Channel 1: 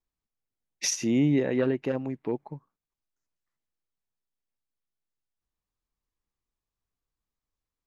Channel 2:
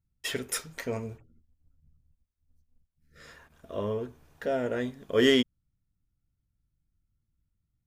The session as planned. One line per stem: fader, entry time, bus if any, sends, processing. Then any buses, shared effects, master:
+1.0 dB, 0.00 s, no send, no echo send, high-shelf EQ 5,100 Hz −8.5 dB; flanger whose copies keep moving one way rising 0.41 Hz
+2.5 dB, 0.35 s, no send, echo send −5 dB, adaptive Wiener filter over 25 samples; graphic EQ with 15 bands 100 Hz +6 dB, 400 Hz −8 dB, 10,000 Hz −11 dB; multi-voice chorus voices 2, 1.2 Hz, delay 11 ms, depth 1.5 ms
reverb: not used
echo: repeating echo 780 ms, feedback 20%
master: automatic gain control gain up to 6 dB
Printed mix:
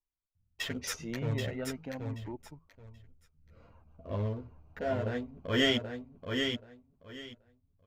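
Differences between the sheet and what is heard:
stem 1 +1.0 dB → −5.5 dB
master: missing automatic gain control gain up to 6 dB

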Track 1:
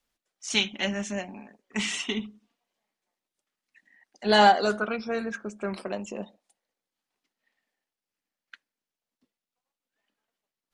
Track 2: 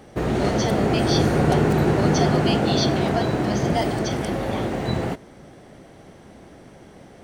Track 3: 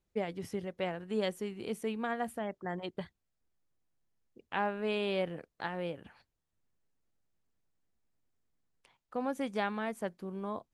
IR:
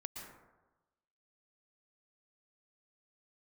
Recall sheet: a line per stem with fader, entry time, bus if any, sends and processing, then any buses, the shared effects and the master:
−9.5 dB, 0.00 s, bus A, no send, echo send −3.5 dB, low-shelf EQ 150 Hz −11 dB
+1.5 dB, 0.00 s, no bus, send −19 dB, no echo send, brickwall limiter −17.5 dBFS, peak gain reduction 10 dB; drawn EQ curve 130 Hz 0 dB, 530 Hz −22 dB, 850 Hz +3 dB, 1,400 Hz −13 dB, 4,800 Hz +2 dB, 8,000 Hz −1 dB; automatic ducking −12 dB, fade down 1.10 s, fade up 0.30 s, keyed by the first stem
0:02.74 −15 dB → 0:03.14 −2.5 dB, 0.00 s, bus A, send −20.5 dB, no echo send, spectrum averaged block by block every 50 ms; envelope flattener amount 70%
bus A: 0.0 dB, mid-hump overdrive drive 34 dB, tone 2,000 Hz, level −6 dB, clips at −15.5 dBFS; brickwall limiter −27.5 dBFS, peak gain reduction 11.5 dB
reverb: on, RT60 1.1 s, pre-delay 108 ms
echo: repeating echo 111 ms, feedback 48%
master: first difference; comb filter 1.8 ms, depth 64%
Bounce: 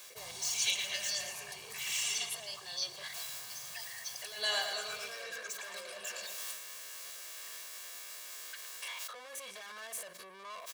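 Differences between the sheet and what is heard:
stem 1 −9.5 dB → +1.5 dB
stem 2: missing brickwall limiter −17.5 dBFS, peak gain reduction 10 dB

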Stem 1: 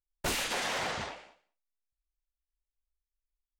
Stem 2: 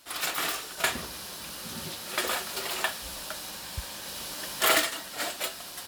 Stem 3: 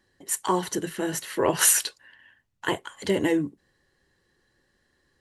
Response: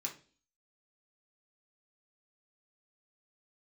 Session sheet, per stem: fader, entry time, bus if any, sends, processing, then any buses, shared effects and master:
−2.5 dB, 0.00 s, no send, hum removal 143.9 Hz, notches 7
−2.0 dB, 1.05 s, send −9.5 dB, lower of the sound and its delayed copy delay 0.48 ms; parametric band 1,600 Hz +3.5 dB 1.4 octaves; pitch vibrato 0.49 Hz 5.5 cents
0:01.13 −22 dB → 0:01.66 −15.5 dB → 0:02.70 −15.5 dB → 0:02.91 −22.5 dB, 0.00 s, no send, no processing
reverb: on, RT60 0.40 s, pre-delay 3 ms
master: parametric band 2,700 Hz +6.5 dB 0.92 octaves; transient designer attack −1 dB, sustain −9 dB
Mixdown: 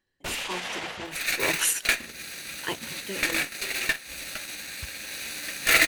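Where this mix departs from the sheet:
stem 2: send −9.5 dB → −3.5 dB
stem 3 −22.0 dB → −12.5 dB

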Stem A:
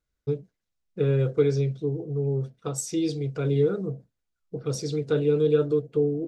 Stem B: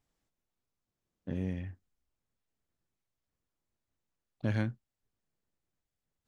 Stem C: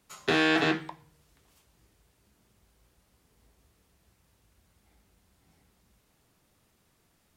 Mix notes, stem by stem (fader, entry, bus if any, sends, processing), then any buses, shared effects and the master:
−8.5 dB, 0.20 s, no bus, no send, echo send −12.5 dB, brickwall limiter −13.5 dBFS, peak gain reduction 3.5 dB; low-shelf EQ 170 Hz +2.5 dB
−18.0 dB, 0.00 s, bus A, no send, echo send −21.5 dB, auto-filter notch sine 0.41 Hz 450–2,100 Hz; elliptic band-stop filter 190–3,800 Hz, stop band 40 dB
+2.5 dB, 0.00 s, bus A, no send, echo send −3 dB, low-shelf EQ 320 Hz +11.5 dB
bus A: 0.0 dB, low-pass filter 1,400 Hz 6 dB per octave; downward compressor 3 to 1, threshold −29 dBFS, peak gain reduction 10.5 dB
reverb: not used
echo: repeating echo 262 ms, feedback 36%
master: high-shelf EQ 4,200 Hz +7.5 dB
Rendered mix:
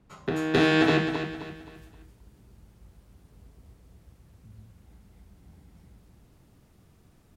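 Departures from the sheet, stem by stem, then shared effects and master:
stem A: muted
master: missing high-shelf EQ 4,200 Hz +7.5 dB

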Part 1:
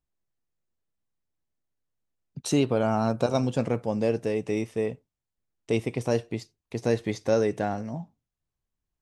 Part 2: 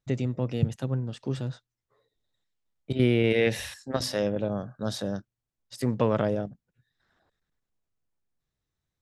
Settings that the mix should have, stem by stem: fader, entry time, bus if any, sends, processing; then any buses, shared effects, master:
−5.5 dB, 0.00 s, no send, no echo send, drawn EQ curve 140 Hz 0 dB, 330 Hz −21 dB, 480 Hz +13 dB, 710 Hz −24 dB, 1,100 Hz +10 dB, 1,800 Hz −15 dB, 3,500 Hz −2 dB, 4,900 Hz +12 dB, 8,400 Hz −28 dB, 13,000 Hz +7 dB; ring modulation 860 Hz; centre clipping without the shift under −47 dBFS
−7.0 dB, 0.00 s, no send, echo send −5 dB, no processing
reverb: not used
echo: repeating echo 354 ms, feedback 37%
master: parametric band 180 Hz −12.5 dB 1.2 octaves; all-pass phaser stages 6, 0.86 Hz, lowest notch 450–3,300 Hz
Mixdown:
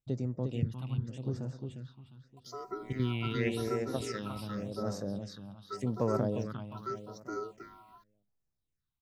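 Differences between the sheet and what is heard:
stem 1 −5.5 dB → −14.5 dB
master: missing parametric band 180 Hz −12.5 dB 1.2 octaves

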